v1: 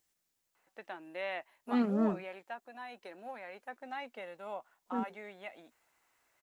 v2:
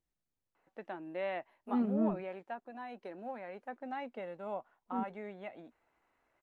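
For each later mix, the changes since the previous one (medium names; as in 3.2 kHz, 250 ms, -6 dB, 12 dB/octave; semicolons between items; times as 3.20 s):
second voice -9.0 dB; master: add tilt EQ -3.5 dB/octave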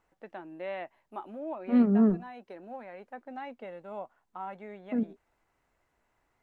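first voice: entry -0.55 s; second voice +9.5 dB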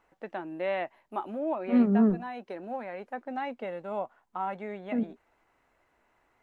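first voice +6.5 dB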